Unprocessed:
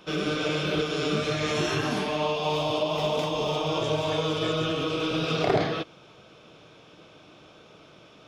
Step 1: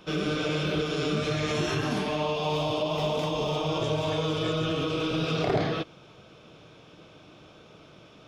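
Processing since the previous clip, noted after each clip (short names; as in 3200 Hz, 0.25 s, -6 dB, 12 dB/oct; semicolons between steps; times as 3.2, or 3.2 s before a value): low shelf 210 Hz +6 dB; in parallel at +1.5 dB: limiter -19 dBFS, peak gain reduction 9 dB; on the sum: gain -8 dB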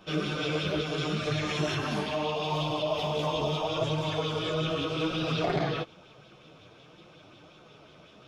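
chorus voices 2, 0.75 Hz, delay 10 ms, depth 4.5 ms; LFO bell 5.5 Hz 660–3900 Hz +6 dB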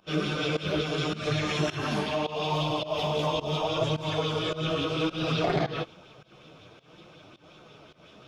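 pump 106 bpm, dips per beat 1, -19 dB, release 0.182 s; gain +2 dB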